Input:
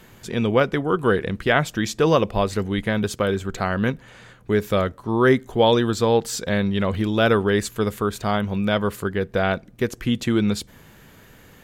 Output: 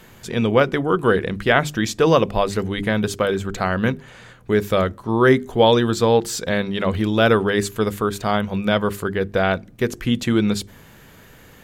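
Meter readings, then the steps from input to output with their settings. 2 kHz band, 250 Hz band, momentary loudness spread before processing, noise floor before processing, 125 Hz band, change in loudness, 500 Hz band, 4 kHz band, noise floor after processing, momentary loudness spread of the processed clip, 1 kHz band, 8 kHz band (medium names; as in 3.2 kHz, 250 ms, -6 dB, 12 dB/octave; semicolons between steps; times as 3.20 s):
+2.5 dB, +1.5 dB, 7 LU, -50 dBFS, +1.0 dB, +2.0 dB, +2.5 dB, +2.5 dB, -47 dBFS, 7 LU, +2.5 dB, +2.0 dB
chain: hum notches 50/100/150/200/250/300/350/400 Hz; de-esser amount 45%; trim +2.5 dB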